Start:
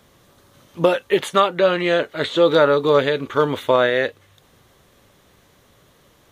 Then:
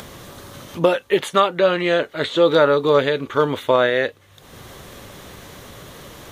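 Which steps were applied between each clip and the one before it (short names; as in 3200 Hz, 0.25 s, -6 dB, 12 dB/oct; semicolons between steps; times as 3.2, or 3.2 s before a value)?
upward compressor, threshold -25 dBFS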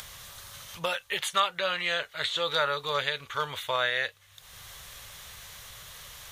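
passive tone stack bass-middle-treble 10-0-10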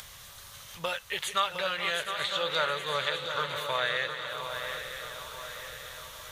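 regenerating reverse delay 0.408 s, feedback 72%, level -10.5 dB; swung echo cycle 0.949 s, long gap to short 3:1, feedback 42%, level -9 dB; gain -2.5 dB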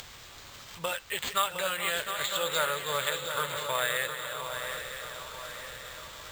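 careless resampling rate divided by 4×, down none, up hold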